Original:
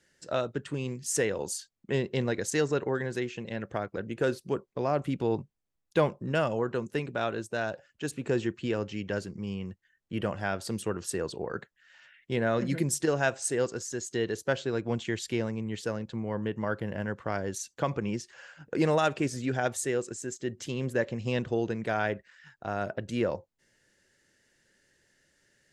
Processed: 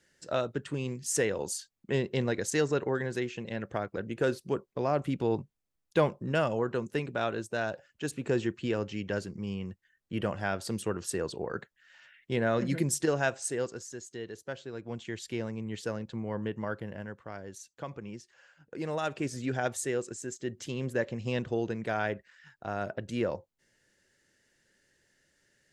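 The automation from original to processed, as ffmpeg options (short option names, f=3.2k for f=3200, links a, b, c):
-af "volume=16.5dB,afade=t=out:st=13.03:d=1.14:silence=0.316228,afade=t=in:st=14.72:d=1.1:silence=0.375837,afade=t=out:st=16.46:d=0.77:silence=0.375837,afade=t=in:st=18.83:d=0.6:silence=0.375837"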